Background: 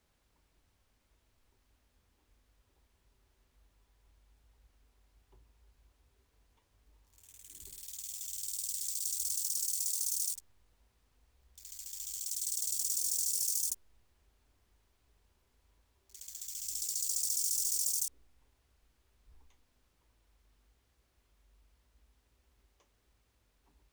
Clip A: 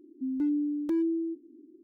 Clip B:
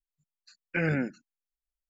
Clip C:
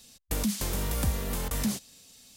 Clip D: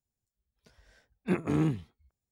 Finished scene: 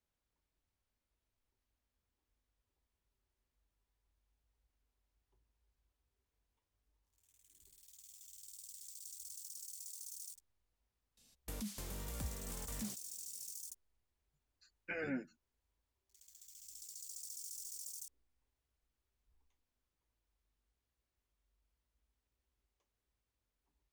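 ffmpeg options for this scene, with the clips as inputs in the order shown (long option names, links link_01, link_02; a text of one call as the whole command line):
ffmpeg -i bed.wav -i cue0.wav -i cue1.wav -i cue2.wav -filter_complex "[0:a]volume=-15.5dB[link_01];[2:a]asplit=2[link_02][link_03];[link_03]adelay=9.5,afreqshift=-1.7[link_04];[link_02][link_04]amix=inputs=2:normalize=1[link_05];[3:a]atrim=end=2.36,asetpts=PTS-STARTPTS,volume=-15dB,afade=type=in:duration=0.004:curve=hsin,afade=type=out:start_time=2.356:duration=0.004:curve=hsin,adelay=11170[link_06];[link_05]atrim=end=1.89,asetpts=PTS-STARTPTS,volume=-8.5dB,afade=type=in:duration=0.004:curve=hsin,afade=type=out:start_time=1.886:duration=0.004:curve=hsin,adelay=14140[link_07];[link_01][link_06][link_07]amix=inputs=3:normalize=0" out.wav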